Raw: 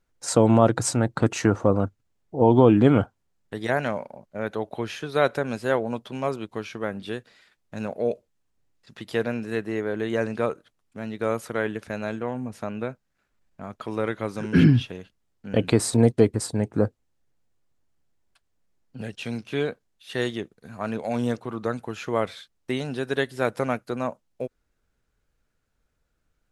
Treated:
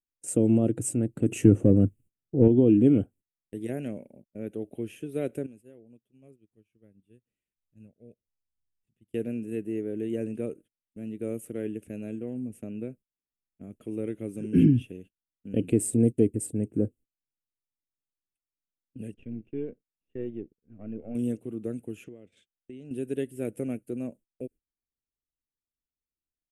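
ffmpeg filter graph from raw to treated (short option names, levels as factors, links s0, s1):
-filter_complex "[0:a]asettb=1/sr,asplit=3[s0][s1][s2];[s0]atrim=end=1.284[s3];[s1]atrim=start=1.28:end=2.48,asetpts=PTS-STARTPTS,afade=t=in:d=0.004:c=qsin,afade=t=out:st=1.196:d=0.004:c=qsin,equalizer=f=130:t=o:w=0.92:g=6.5,acontrast=60[s4];[s2]atrim=start=2.476[s5];[s3][s4]acrossfade=d=0.004:c1=hsin:c2=qsin[s6];[s6][s5]acrossfade=d=0.004:c1=qsin:c2=hsin,asettb=1/sr,asplit=3[s7][s8][s9];[s7]atrim=end=5.464[s10];[s8]atrim=start=5.46:end=9.14,asetpts=PTS-STARTPTS,afade=t=in:d=0.004:c=qsin,afade=t=out:st=3.676:d=0.004:c=qsin,asubboost=boost=5.5:cutoff=160,acompressor=threshold=0.00355:ratio=2.5:attack=3.2:release=140:knee=1:detection=peak[s11];[s9]atrim=start=9.136[s12];[s10][s11]acrossfade=d=0.004:c1=hsin:c2=qsin[s13];[s13][s12]acrossfade=d=0.004:c1=qsin:c2=hsin,asettb=1/sr,asplit=3[s14][s15][s16];[s14]atrim=end=19.144[s17];[s15]atrim=start=19.14:end=21.15,asetpts=PTS-STARTPTS,afade=t=in:d=0.004:c=qsin,afade=t=out:st=2.006:d=0.004:c=qsin,aeval=exprs='if(lt(val(0),0),0.447*val(0),val(0))':c=same,lowpass=1600[s18];[s16]atrim=start=21.146[s19];[s17][s18]acrossfade=d=0.004:c1=hsin:c2=qsin[s20];[s20][s19]acrossfade=d=0.004:c1=qsin:c2=hsin,asettb=1/sr,asplit=3[s21][s22][s23];[s21]atrim=end=22.044[s24];[s22]atrim=start=22.04:end=22.91,asetpts=PTS-STARTPTS,afade=t=in:d=0.004:c=qsin,afade=t=out:st=0.866:d=0.004:c=qsin,lowpass=f=6700:w=0.5412,lowpass=f=6700:w=1.3066,acompressor=threshold=0.0178:ratio=10:attack=3.2:release=140:knee=1:detection=peak[s25];[s23]atrim=start=22.906[s26];[s24][s25]acrossfade=d=0.004:c1=hsin:c2=qsin[s27];[s27][s26]acrossfade=d=0.004:c1=qsin:c2=hsin,agate=range=0.0891:threshold=0.00708:ratio=16:detection=peak,firequalizer=gain_entry='entry(150,0);entry(300,6);entry(960,-26);entry(2700,-4);entry(4100,-24);entry(8600,5)':delay=0.05:min_phase=1,volume=0.531"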